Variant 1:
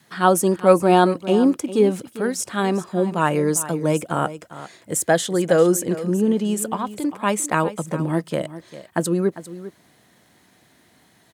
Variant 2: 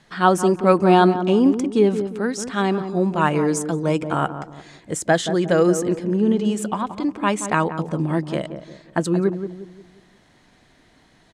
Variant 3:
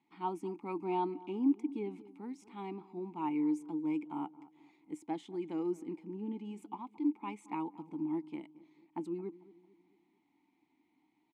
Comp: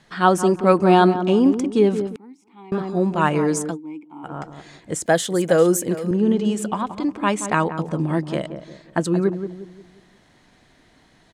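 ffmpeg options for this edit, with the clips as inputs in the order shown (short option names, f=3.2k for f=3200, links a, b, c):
-filter_complex "[2:a]asplit=2[a][b];[1:a]asplit=4[c][d][e][f];[c]atrim=end=2.162[g];[a]atrim=start=2.158:end=2.722[h];[d]atrim=start=2.718:end=3.78[i];[b]atrim=start=3.68:end=4.33[j];[e]atrim=start=4.23:end=5.062[k];[0:a]atrim=start=5.058:end=6.112[l];[f]atrim=start=6.108[m];[g][h]acrossfade=d=0.004:c1=hsin:c2=hsin[n];[n][i]acrossfade=d=0.004:c1=hsin:c2=hsin[o];[o][j]acrossfade=d=0.1:c1=tri:c2=tri[p];[p][k]acrossfade=d=0.1:c1=tri:c2=tri[q];[q][l]acrossfade=d=0.004:c1=hsin:c2=hsin[r];[r][m]acrossfade=d=0.004:c1=hsin:c2=hsin"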